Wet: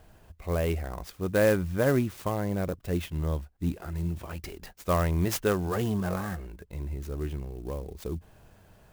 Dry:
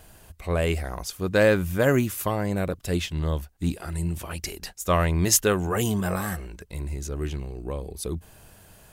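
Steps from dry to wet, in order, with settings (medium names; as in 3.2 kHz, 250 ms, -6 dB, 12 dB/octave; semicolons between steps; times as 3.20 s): treble shelf 2.6 kHz -10 dB; sampling jitter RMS 0.03 ms; trim -3 dB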